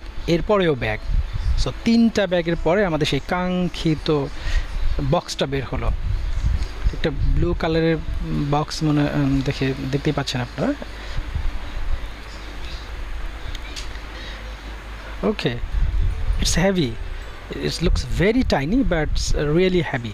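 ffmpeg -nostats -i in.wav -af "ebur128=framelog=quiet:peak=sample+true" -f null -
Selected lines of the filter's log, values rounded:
Integrated loudness:
  I:         -22.2 LUFS
  Threshold: -32.9 LUFS
Loudness range:
  LRA:        10.6 LU
  Threshold: -43.4 LUFS
  LRA low:   -31.2 LUFS
  LRA high:  -20.6 LUFS
Sample peak:
  Peak:       -9.5 dBFS
True peak:
  Peak:       -9.2 dBFS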